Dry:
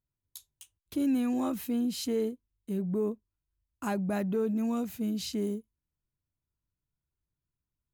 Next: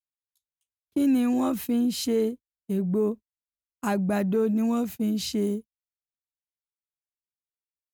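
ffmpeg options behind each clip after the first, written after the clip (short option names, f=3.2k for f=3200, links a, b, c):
-af "agate=range=-34dB:threshold=-40dB:ratio=16:detection=peak,volume=5.5dB"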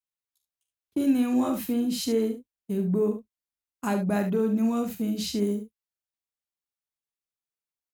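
-af "aecho=1:1:44|72:0.355|0.335,volume=-1.5dB"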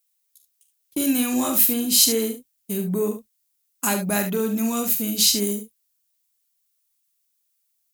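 -af "crystalizer=i=8.5:c=0"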